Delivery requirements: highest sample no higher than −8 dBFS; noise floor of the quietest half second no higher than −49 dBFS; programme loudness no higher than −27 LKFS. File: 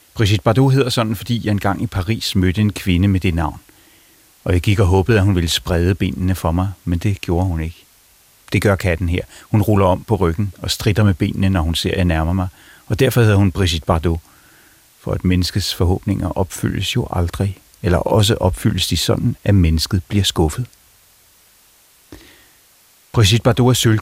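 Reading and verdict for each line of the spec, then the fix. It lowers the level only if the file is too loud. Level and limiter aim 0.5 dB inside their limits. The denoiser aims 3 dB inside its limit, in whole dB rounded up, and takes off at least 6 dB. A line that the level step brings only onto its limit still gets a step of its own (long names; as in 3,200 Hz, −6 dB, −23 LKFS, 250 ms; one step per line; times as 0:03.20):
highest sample −2.5 dBFS: out of spec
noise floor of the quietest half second −52 dBFS: in spec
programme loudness −17.5 LKFS: out of spec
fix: level −10 dB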